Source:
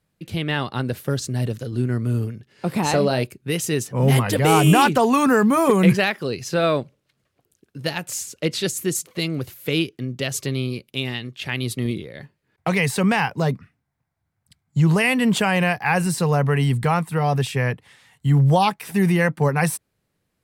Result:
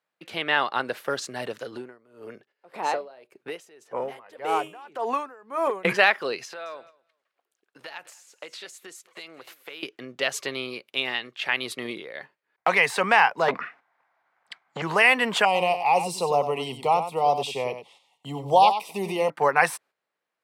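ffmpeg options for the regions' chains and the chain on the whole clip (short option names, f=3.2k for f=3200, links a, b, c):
-filter_complex "[0:a]asettb=1/sr,asplit=3[a][b][c];[a]atrim=end=1.774[d];[b]atrim=start=1.77:end=5.85,asetpts=PTS-STARTPTS,afade=t=in:d=0.004:c=qsin,afade=t=out:st=4.076:d=0.004:c=qsin,equalizer=f=470:t=o:w=1.7:g=7.5,acompressor=threshold=-24dB:ratio=3:attack=3.2:release=140:knee=1:detection=peak,aeval=exprs='val(0)*pow(10,-24*(0.5-0.5*cos(2*PI*1.8*n/s))/20)':c=same[e];[c]atrim=start=5.846[f];[d][e]acrossfade=d=0.004:c1=hsin:c2=qsin[g];[g][f]acrossfade=d=0.004:c1=qsin:c2=hsin,asettb=1/sr,asplit=3[h][i][j];[h]atrim=end=6.454[k];[i]atrim=start=6.45:end=9.83,asetpts=PTS-STARTPTS,afade=t=in:d=0.004:c=qsin,afade=t=out:st=3.376:d=0.004:c=qsin,lowshelf=f=280:g=-9,acompressor=threshold=-35dB:ratio=12:attack=3.2:release=140:knee=1:detection=peak,aecho=1:1:209|418:0.141|0.0254,atrim=end_sample=149058[l];[j]atrim=start=9.826[m];[k][l]acrossfade=d=0.004:c1=hsin:c2=qsin[n];[n][m]acrossfade=d=0.004:c1=qsin:c2=hsin,asettb=1/sr,asplit=3[o][p][q];[o]atrim=end=13.484[r];[p]atrim=start=13.48:end=14.82,asetpts=PTS-STARTPTS,afade=t=in:d=0.004:c=qsin,afade=t=out:st=1.336:d=0.004:c=qsin,highshelf=f=4.1k:g=-11.5,acompressor=threshold=-22dB:ratio=3:attack=3.2:release=140:knee=1:detection=peak,asplit=2[s][t];[t]highpass=f=720:p=1,volume=28dB,asoftclip=type=tanh:threshold=-10.5dB[u];[s][u]amix=inputs=2:normalize=0,lowpass=f=3.7k:p=1,volume=-6dB[v];[q]atrim=start=14.816[w];[r][v]acrossfade=d=0.004:c1=hsin:c2=qsin[x];[x][w]acrossfade=d=0.004:c1=qsin:c2=hsin,asettb=1/sr,asplit=3[y][z][aa];[y]atrim=end=15.454[ab];[z]atrim=start=15.45:end=19.3,asetpts=PTS-STARTPTS,afade=t=in:d=0.004:c=qsin,afade=t=out:st=3.846:d=0.004:c=qsin,asuperstop=centerf=1600:order=4:qfactor=0.88,aecho=1:1:95:0.316,atrim=end_sample=169785[ac];[aa]atrim=start=19.296[ad];[ab][ac]acrossfade=d=0.004:c1=hsin:c2=qsin[ae];[ae][ad]acrossfade=d=0.004:c1=qsin:c2=hsin,lowpass=f=1.4k:p=1,agate=range=-8dB:threshold=-50dB:ratio=16:detection=peak,highpass=800,volume=8.5dB"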